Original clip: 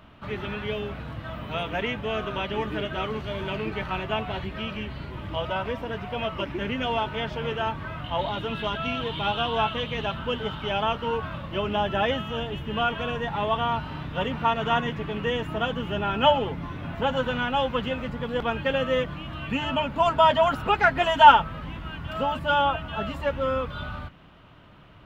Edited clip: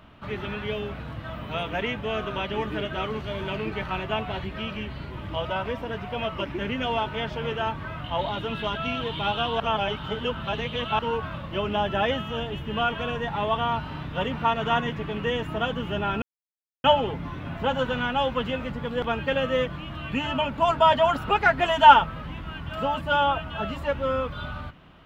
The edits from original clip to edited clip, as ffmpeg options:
-filter_complex "[0:a]asplit=4[s0][s1][s2][s3];[s0]atrim=end=9.602[s4];[s1]atrim=start=9.598:end=10.992,asetpts=PTS-STARTPTS,areverse[s5];[s2]atrim=start=10.988:end=16.22,asetpts=PTS-STARTPTS,afade=t=out:st=5.228:d=0.004:c=hsin,apad=pad_dur=0.62[s6];[s3]atrim=start=16.22,asetpts=PTS-STARTPTS,afade=t=in:d=0.004:c=hsin[s7];[s4][s5]acrossfade=d=0.004:c1=hsin:c2=hsin[s8];[s6][s7]concat=n=2:v=0:a=1[s9];[s8][s9]acrossfade=d=0.004:c1=hsin:c2=hsin"

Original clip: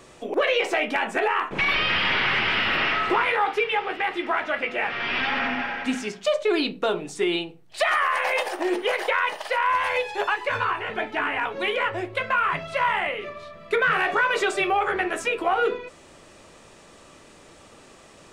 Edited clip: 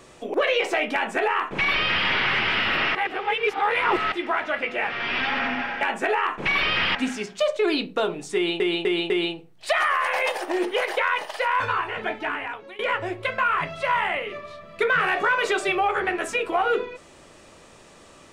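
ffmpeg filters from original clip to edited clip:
-filter_complex "[0:a]asplit=10[s0][s1][s2][s3][s4][s5][s6][s7][s8][s9];[s0]atrim=end=2.952[s10];[s1]atrim=start=2.948:end=4.122,asetpts=PTS-STARTPTS,areverse[s11];[s2]atrim=start=4.118:end=5.812[s12];[s3]atrim=start=0.938:end=2.082[s13];[s4]atrim=start=5.808:end=7.462[s14];[s5]atrim=start=7.208:end=7.462[s15];[s6]atrim=start=7.208:end=7.462[s16];[s7]atrim=start=7.208:end=9.712[s17];[s8]atrim=start=10.518:end=11.71,asetpts=PTS-STARTPTS,afade=t=out:st=0.532:d=0.66:silence=0.0707946[s18];[s9]atrim=start=11.71,asetpts=PTS-STARTPTS,afade=t=in:d=0.004:c=hsin:silence=0.0707946[s19];[s10][s11]acrossfade=d=0.004:c1=hsin:c2=hsin[s20];[s20][s12]acrossfade=d=0.004:c1=hsin:c2=hsin[s21];[s21][s13]acrossfade=d=0.004:c1=hsin:c2=hsin[s22];[s22][s14]acrossfade=d=0.004:c1=hsin:c2=hsin[s23];[s23][s15]acrossfade=d=0.004:c1=hsin:c2=hsin[s24];[s24][s16]acrossfade=d=0.004:c1=hsin:c2=hsin[s25];[s25][s17]acrossfade=d=0.004:c1=hsin:c2=hsin[s26];[s18][s19]concat=n=2:v=0:a=1[s27];[s26][s27]acrossfade=d=0.004:c1=hsin:c2=hsin"

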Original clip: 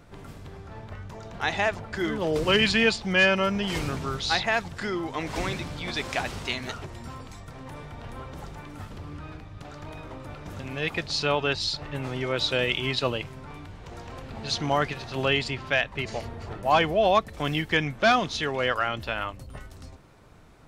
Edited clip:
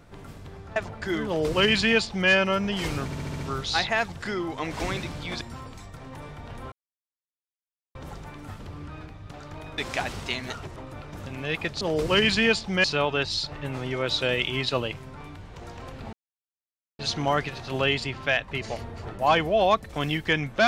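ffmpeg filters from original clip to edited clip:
-filter_complex "[0:a]asplit=14[s0][s1][s2][s3][s4][s5][s6][s7][s8][s9][s10][s11][s12][s13];[s0]atrim=end=0.762[s14];[s1]atrim=start=1.668:end=4.032[s15];[s2]atrim=start=3.958:end=4.032[s16];[s3]atrim=start=3.958:end=4.032[s17];[s4]atrim=start=3.958:end=4.032[s18];[s5]atrim=start=3.958:end=4.032[s19];[s6]atrim=start=3.958:end=5.972[s20];[s7]atrim=start=6.948:end=8.26,asetpts=PTS-STARTPTS,afade=t=out:st=1.308:d=0.004:c=hsin,apad=pad_dur=1.23[s21];[s8]atrim=start=8.26:end=10.092,asetpts=PTS-STARTPTS,afade=t=in:d=0.004:c=hsin[s22];[s9]atrim=start=5.968:end=6.952[s23];[s10]atrim=start=10.088:end=11.142[s24];[s11]atrim=start=2.178:end=3.212[s25];[s12]atrim=start=11.138:end=14.43,asetpts=PTS-STARTPTS,afade=t=out:st=3.288:d=0.004:c=hsin,apad=pad_dur=0.86[s26];[s13]atrim=start=14.43,asetpts=PTS-STARTPTS,afade=t=in:d=0.004:c=hsin[s27];[s14][s15]acrossfade=d=0.004:c1=hsin:c2=hsin[s28];[s28][s16]acrossfade=d=0.004:c1=hsin:c2=hsin[s29];[s29][s17]acrossfade=d=0.004:c1=hsin:c2=hsin[s30];[s30][s18]acrossfade=d=0.004:c1=hsin:c2=hsin[s31];[s31][s19]acrossfade=d=0.004:c1=hsin:c2=hsin[s32];[s32][s20]acrossfade=d=0.004:c1=hsin:c2=hsin[s33];[s21][s22]concat=n=2:v=0:a=1[s34];[s33][s34]acrossfade=d=0.004:c1=hsin:c2=hsin[s35];[s35][s23]acrossfade=d=0.004:c1=hsin:c2=hsin[s36];[s36][s24]acrossfade=d=0.004:c1=hsin:c2=hsin[s37];[s37][s25]acrossfade=d=0.004:c1=hsin:c2=hsin[s38];[s26][s27]concat=n=2:v=0:a=1[s39];[s38][s39]acrossfade=d=0.004:c1=hsin:c2=hsin"

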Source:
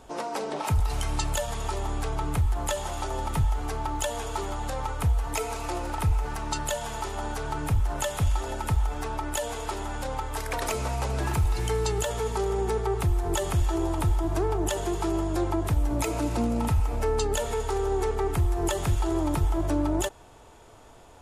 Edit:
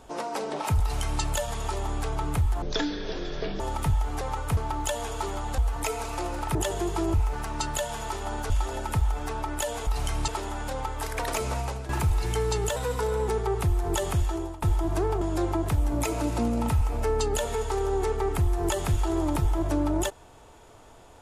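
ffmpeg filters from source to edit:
-filter_complex "[0:a]asplit=16[s0][s1][s2][s3][s4][s5][s6][s7][s8][s9][s10][s11][s12][s13][s14][s15];[s0]atrim=end=2.624[s16];[s1]atrim=start=2.62:end=3.11,asetpts=PTS-STARTPTS,asetrate=22050,aresample=44100[s17];[s2]atrim=start=3.106:end=3.722[s18];[s3]atrim=start=4.728:end=5.092[s19];[s4]atrim=start=3.718:end=4.732[s20];[s5]atrim=start=5.088:end=6.062[s21];[s6]atrim=start=14.608:end=15.202[s22];[s7]atrim=start=6.058:end=7.422[s23];[s8]atrim=start=8.248:end=9.622[s24];[s9]atrim=start=0.808:end=1.222[s25];[s10]atrim=start=9.618:end=11.23,asetpts=PTS-STARTPTS,afade=t=out:st=1.302:d=0.31:silence=0.237137[s26];[s11]atrim=start=11.23:end=12.104,asetpts=PTS-STARTPTS,afade=t=in:d=0.004:c=hsin:silence=0.237137[s27];[s12]atrim=start=12.1:end=12.68,asetpts=PTS-STARTPTS,asetrate=48951,aresample=44100,atrim=end_sample=23043,asetpts=PTS-STARTPTS[s28];[s13]atrim=start=12.676:end=14.02,asetpts=PTS-STARTPTS,afade=t=out:st=0.744:d=0.6:c=qsin:silence=0.0944061[s29];[s14]atrim=start=14.02:end=14.612,asetpts=PTS-STARTPTS,afade=t=in:d=0.004:c=hsin:silence=0.0944061[s30];[s15]atrim=start=15.198[s31];[s16][s17]acrossfade=d=0.004:c1=hsin:c2=hsin[s32];[s32][s18]acrossfade=d=0.004:c1=hsin:c2=hsin[s33];[s33][s19]acrossfade=d=0.004:c1=hsin:c2=hsin[s34];[s34][s20]acrossfade=d=0.004:c1=hsin:c2=hsin[s35];[s35][s21]acrossfade=d=0.004:c1=hsin:c2=hsin[s36];[s36][s22]acrossfade=d=0.004:c1=hsin:c2=hsin[s37];[s37][s23]acrossfade=d=0.004:c1=hsin:c2=hsin[s38];[s38][s24]acrossfade=d=0.004:c1=hsin:c2=hsin[s39];[s39][s25]acrossfade=d=0.004:c1=hsin:c2=hsin[s40];[s26][s27]concat=n=2:v=0:a=1[s41];[s40][s41]acrossfade=d=0.004:c1=hsin:c2=hsin[s42];[s42][s28]acrossfade=d=0.004:c1=hsin:c2=hsin[s43];[s29][s30]concat=n=2:v=0:a=1[s44];[s43][s44]acrossfade=d=0.004:c1=hsin:c2=hsin[s45];[s45][s31]acrossfade=d=0.004:c1=hsin:c2=hsin"

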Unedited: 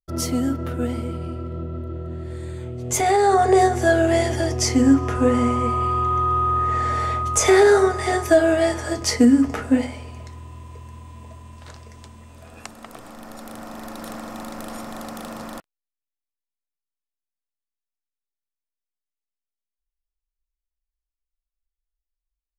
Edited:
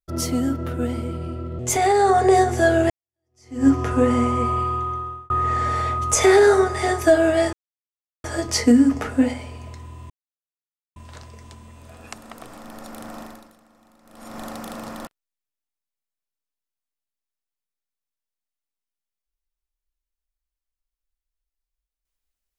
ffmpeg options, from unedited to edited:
-filter_complex "[0:a]asplit=9[s0][s1][s2][s3][s4][s5][s6][s7][s8];[s0]atrim=end=1.592[s9];[s1]atrim=start=2.828:end=4.14,asetpts=PTS-STARTPTS,afade=t=out:st=1.308:d=0.004:c=hsin[s10];[s2]atrim=start=4.14:end=6.54,asetpts=PTS-STARTPTS,afade=t=in:d=0.77:c=exp,afade=t=out:st=1.62:d=0.78[s11];[s3]atrim=start=6.54:end=8.77,asetpts=PTS-STARTPTS,afade=t=in:d=0.004:c=hsin,afade=t=out:st=2.226:d=0.004:c=hsin,apad=pad_dur=0.71[s12];[s4]atrim=start=8.77:end=10.63,asetpts=PTS-STARTPTS,afade=t=in:d=0.004:c=hsin,afade=t=out:st=1.856:d=0.004:c=hsin[s13];[s5]atrim=start=10.63:end=11.49,asetpts=PTS-STARTPTS,volume=0[s14];[s6]atrim=start=11.49:end=14.13,asetpts=PTS-STARTPTS,afade=t=in:d=0.004:c=hsin,afade=t=out:st=2.24:d=0.4:c=qua:silence=0.0749894[s15];[s7]atrim=start=14.13:end=14.52,asetpts=PTS-STARTPTS,volume=0.075[s16];[s8]atrim=start=14.52,asetpts=PTS-STARTPTS,afade=t=in:d=0.4:c=qua:silence=0.0749894[s17];[s10][s11][s12][s13][s14][s15][s16][s17]concat=n=8:v=0:a=1[s18];[s9][s18]acrossfade=d=0.004:c1=hsin:c2=hsin"

